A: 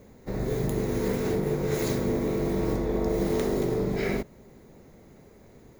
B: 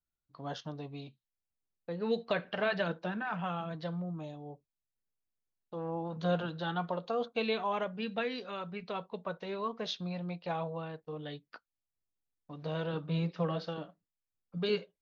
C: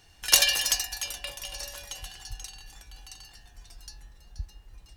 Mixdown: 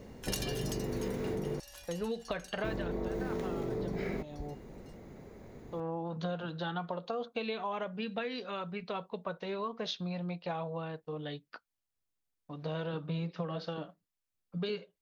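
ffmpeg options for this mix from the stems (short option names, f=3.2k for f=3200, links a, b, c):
-filter_complex "[0:a]highshelf=f=5.8k:g=-11,volume=2dB,asplit=3[a][b][c];[a]atrim=end=1.6,asetpts=PTS-STARTPTS,afade=t=out:st=1.596:d=0.004:c=hsin[d];[b]atrim=start=1.6:end=2.64,asetpts=PTS-STARTPTS,volume=0[e];[c]atrim=start=2.64,asetpts=PTS-STARTPTS,afade=t=in:d=0.004:c=hsin[f];[d][e][f]concat=n=3:v=0:a=1[g];[1:a]volume=2dB[h];[2:a]volume=-8.5dB[i];[g][h][i]amix=inputs=3:normalize=0,acompressor=threshold=-32dB:ratio=10"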